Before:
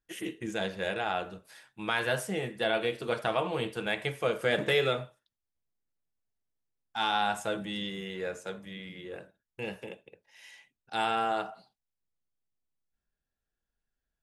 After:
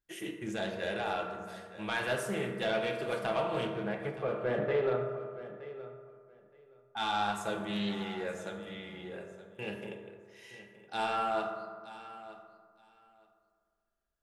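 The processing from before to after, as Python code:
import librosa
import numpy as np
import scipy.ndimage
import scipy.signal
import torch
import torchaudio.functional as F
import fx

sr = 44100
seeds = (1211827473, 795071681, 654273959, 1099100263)

y = fx.lowpass(x, sr, hz=1300.0, slope=12, at=(3.67, 6.97))
y = 10.0 ** (-21.0 / 20.0) * np.tanh(y / 10.0 ** (-21.0 / 20.0))
y = fx.echo_feedback(y, sr, ms=920, feedback_pct=16, wet_db=-15.5)
y = fx.rev_fdn(y, sr, rt60_s=1.9, lf_ratio=0.9, hf_ratio=0.35, size_ms=15.0, drr_db=2.0)
y = fx.doppler_dist(y, sr, depth_ms=0.16)
y = y * 10.0 ** (-3.0 / 20.0)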